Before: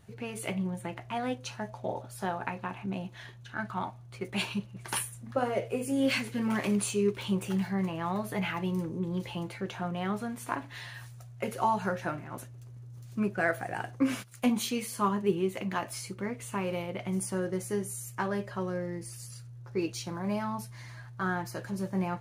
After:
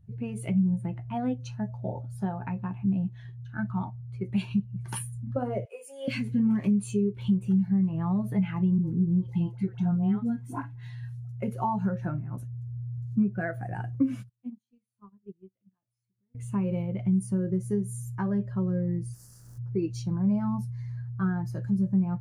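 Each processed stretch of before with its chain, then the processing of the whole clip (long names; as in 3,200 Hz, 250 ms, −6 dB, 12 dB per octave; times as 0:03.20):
0:05.65–0:06.08: high-pass filter 590 Hz 24 dB per octave + notch filter 760 Hz, Q 17
0:08.78–0:11.40: notch comb filter 590 Hz + all-pass dispersion highs, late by 86 ms, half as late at 700 Hz
0:14.29–0:16.35: downward compressor 2.5 to 1, threshold −44 dBFS + noise gate −39 dBFS, range −26 dB
0:19.13–0:19.57: compressing power law on the bin magnitudes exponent 0.3 + flat-topped bell 2,900 Hz −9.5 dB 1.2 octaves
whole clip: bass and treble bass +11 dB, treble +3 dB; downward compressor 12 to 1, threshold −25 dBFS; every bin expanded away from the loudest bin 1.5 to 1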